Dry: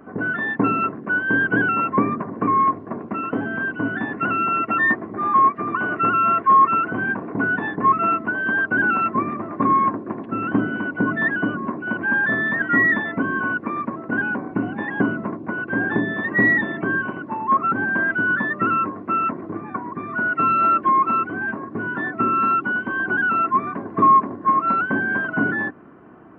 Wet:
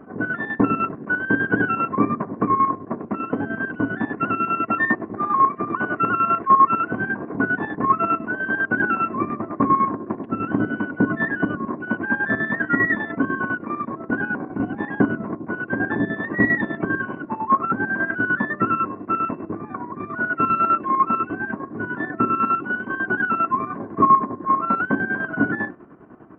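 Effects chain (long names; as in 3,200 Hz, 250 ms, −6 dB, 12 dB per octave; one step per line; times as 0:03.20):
high-shelf EQ 2,400 Hz −10.5 dB
hum removal 177.5 Hz, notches 23
square-wave tremolo 10 Hz, depth 60%, duty 50%
level +3 dB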